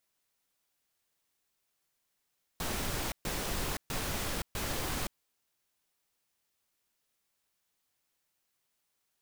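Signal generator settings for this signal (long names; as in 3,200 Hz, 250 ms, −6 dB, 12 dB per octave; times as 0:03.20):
noise bursts pink, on 0.52 s, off 0.13 s, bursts 4, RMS −34.5 dBFS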